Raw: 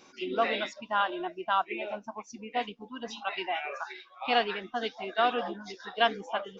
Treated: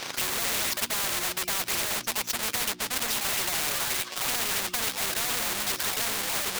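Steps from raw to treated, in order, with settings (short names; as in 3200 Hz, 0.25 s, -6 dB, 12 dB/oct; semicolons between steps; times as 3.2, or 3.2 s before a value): half-waves squared off; sample leveller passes 3; low shelf 290 Hz -11 dB; notches 60/120/180/240/300/360 Hz; in parallel at +1 dB: compressor, threshold -25 dBFS, peak gain reduction 12 dB; on the sum: graphic EQ 125/2000/4000 Hz +10/+3/+5 dB; overdrive pedal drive 19 dB, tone 3500 Hz, clips at -2 dBFS; soft clip -12 dBFS, distortion -12 dB; spectral compressor 4:1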